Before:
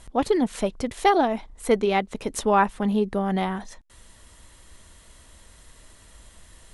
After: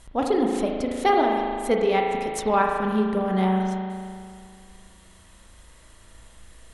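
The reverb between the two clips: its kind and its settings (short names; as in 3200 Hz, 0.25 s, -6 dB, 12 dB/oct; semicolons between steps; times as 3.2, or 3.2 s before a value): spring tank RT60 2.2 s, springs 37 ms, chirp 40 ms, DRR 0.5 dB; gain -2.5 dB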